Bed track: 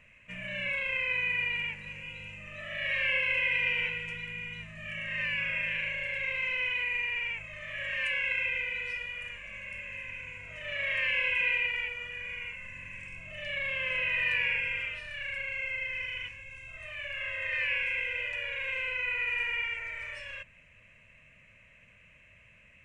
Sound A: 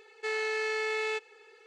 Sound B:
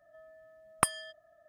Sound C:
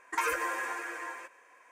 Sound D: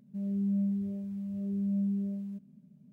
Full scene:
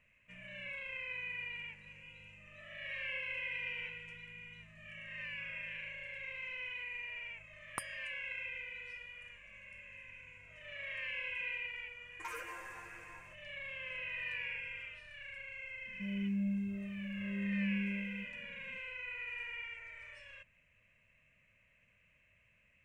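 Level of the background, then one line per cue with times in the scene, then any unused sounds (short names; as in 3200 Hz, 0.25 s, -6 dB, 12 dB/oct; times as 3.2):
bed track -12 dB
6.95 add B -15 dB
12.07 add C -14.5 dB
15.86 add D -5.5 dB
not used: A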